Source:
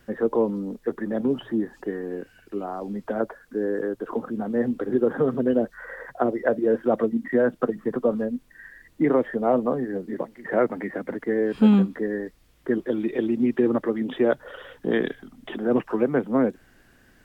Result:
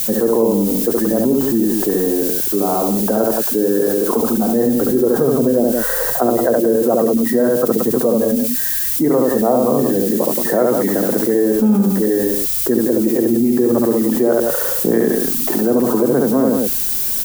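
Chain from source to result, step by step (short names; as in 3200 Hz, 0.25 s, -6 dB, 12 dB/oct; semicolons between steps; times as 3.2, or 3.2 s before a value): LPF 1100 Hz 12 dB/oct; added noise violet -39 dBFS; tapped delay 70/174 ms -3/-10.5 dB; fast leveller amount 70%; gain -1 dB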